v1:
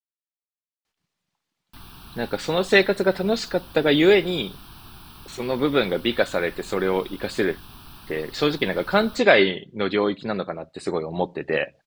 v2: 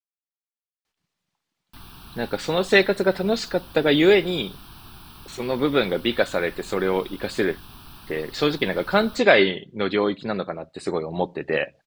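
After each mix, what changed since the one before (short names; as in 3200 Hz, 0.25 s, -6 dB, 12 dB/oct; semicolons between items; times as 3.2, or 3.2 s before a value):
none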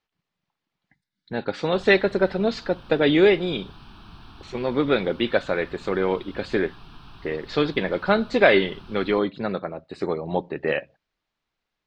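speech: entry -0.85 s; master: add air absorption 150 m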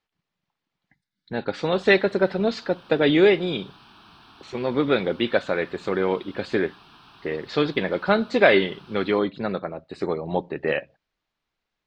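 background: add HPF 420 Hz 6 dB/oct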